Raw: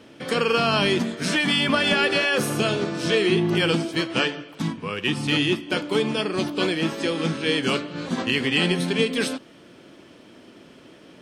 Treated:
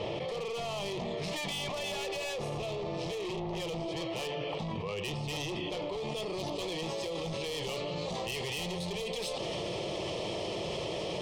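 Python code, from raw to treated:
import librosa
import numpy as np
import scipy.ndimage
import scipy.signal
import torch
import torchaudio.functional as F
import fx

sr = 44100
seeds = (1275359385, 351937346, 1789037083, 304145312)

y = fx.lowpass(x, sr, hz=fx.steps((0.0, 3100.0), (6.03, 6500.0)), slope=12)
y = 10.0 ** (-25.5 / 20.0) * np.tanh(y / 10.0 ** (-25.5 / 20.0))
y = fx.fixed_phaser(y, sr, hz=630.0, stages=4)
y = fx.env_flatten(y, sr, amount_pct=100)
y = y * librosa.db_to_amplitude(-6.5)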